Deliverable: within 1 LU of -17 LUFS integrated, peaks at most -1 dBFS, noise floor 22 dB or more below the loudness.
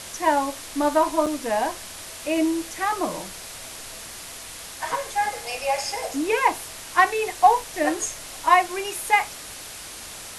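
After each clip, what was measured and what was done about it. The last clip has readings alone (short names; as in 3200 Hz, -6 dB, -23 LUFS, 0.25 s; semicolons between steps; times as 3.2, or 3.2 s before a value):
dropouts 1; longest dropout 5.5 ms; noise floor -39 dBFS; noise floor target -46 dBFS; loudness -23.5 LUFS; peak -5.0 dBFS; loudness target -17.0 LUFS
-> interpolate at 1.26, 5.5 ms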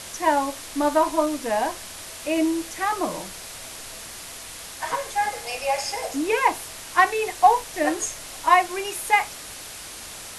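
dropouts 0; noise floor -39 dBFS; noise floor target -46 dBFS
-> denoiser 7 dB, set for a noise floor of -39 dBFS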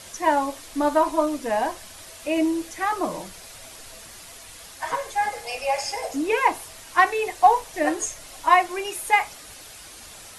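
noise floor -44 dBFS; noise floor target -46 dBFS
-> denoiser 6 dB, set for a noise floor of -44 dBFS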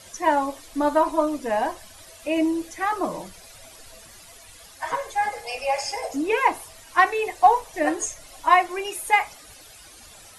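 noise floor -47 dBFS; loudness -23.5 LUFS; peak -5.0 dBFS; loudness target -17.0 LUFS
-> gain +6.5 dB; limiter -1 dBFS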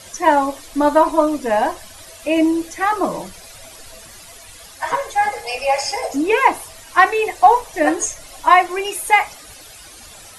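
loudness -17.5 LUFS; peak -1.0 dBFS; noise floor -41 dBFS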